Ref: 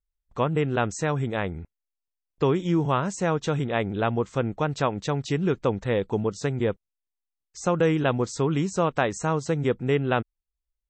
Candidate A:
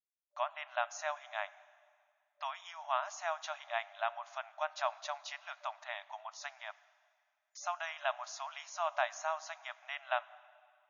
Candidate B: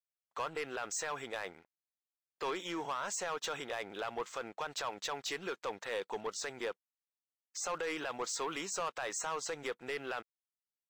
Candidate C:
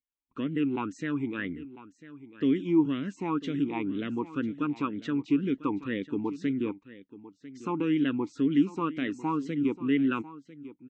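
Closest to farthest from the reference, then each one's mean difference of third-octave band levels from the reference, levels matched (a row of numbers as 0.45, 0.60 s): C, B, A; 7.0, 11.0, 17.5 dB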